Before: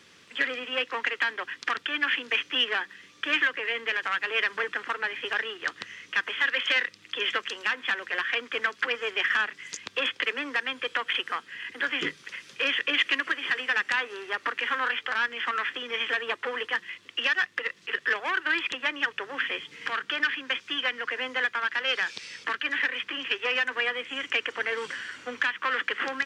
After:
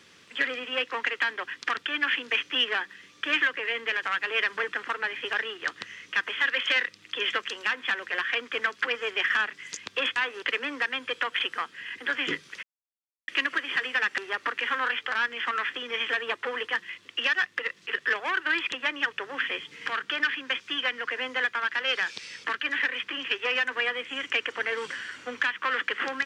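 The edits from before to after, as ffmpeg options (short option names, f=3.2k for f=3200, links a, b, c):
-filter_complex "[0:a]asplit=6[a][b][c][d][e][f];[a]atrim=end=10.162[g];[b]atrim=start=13.918:end=14.182[h];[c]atrim=start=10.158:end=12.37,asetpts=PTS-STARTPTS,afade=t=out:st=2.208:d=0.004:c=hsin[i];[d]atrim=start=12.37:end=13.02,asetpts=PTS-STARTPTS,volume=0[j];[e]atrim=start=13.02:end=13.922,asetpts=PTS-STARTPTS,afade=t=in:d=0.004:c=hsin[k];[f]atrim=start=14.178[l];[g][h]acrossfade=d=0.004:c1=hsin:c2=hsin[m];[i][j][k]concat=n=3:v=0:a=1[n];[m][n]acrossfade=d=0.004:c1=hsin:c2=hsin[o];[o][l]acrossfade=d=0.004:c1=hsin:c2=hsin"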